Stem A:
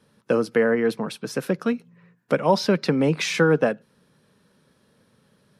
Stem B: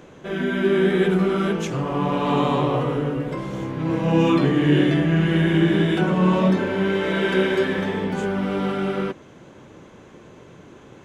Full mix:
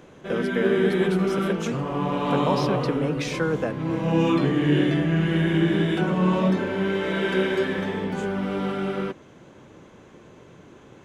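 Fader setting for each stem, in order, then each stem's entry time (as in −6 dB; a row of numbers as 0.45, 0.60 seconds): −7.0, −3.0 decibels; 0.00, 0.00 seconds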